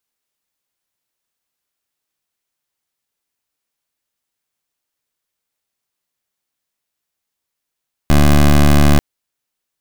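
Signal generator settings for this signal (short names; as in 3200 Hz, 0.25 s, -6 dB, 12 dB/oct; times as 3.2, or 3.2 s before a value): pulse 73.1 Hz, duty 16% -8.5 dBFS 0.89 s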